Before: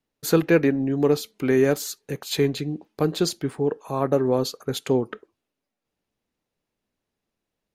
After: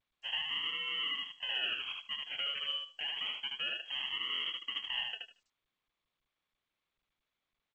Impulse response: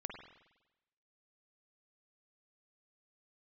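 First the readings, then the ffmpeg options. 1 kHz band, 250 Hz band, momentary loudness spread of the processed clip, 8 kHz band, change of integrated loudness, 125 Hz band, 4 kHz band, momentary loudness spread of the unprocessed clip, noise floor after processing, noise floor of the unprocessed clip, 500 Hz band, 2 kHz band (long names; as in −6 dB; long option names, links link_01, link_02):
−15.0 dB, −40.0 dB, 5 LU, below −35 dB, −12.0 dB, below −40 dB, +3.0 dB, 11 LU, below −85 dBFS, −84 dBFS, −36.5 dB, −4.5 dB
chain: -filter_complex "[0:a]highpass=frequency=210:poles=1,afftdn=noise_reduction=35:noise_floor=-33,equalizer=frequency=2600:width=2.3:gain=-4.5,aecho=1:1:6.7:0.4,acrossover=split=440[link_01][link_02];[link_01]acompressor=threshold=-34dB:ratio=6[link_03];[link_02]alimiter=limit=-24dB:level=0:latency=1:release=193[link_04];[link_03][link_04]amix=inputs=2:normalize=0,acrusher=samples=35:mix=1:aa=0.000001:lfo=1:lforange=35:lforate=0.28,asoftclip=type=tanh:threshold=-31dB,aecho=1:1:76|152|228:0.708|0.127|0.0229,lowpass=frequency=2800:width_type=q:width=0.5098,lowpass=frequency=2800:width_type=q:width=0.6013,lowpass=frequency=2800:width_type=q:width=0.9,lowpass=frequency=2800:width_type=q:width=2.563,afreqshift=-3300,volume=-2.5dB" -ar 16000 -c:a g722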